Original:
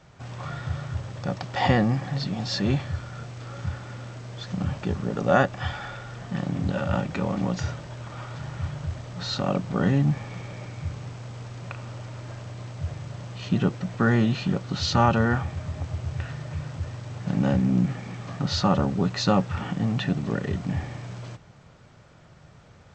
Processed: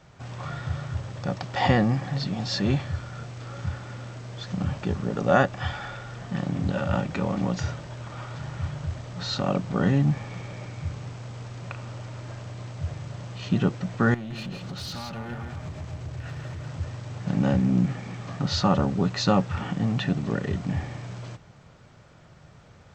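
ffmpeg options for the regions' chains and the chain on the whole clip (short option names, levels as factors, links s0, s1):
-filter_complex "[0:a]asettb=1/sr,asplit=3[s0][s1][s2];[s0]atrim=end=14.144[s3];[s1]atrim=start=14.14:end=16.67,asetpts=PTS-STARTPTS,afade=t=in:d=0.004:c=qsin,afade=t=out:st=2.526:d=0.004:c=qsin,acompressor=threshold=0.0282:ratio=5:attack=3.2:release=140:knee=1:detection=peak,asoftclip=type=hard:threshold=0.0251,aecho=1:1:165:0.562,atrim=end_sample=111573[s4];[s2]atrim=start=16.666[s5];[s3][s4]acrossfade=d=0.004:c1=hsin:c2=qsin[s6];[s6][s5]acrossfade=d=0.004:c1=qsin:c2=hsin"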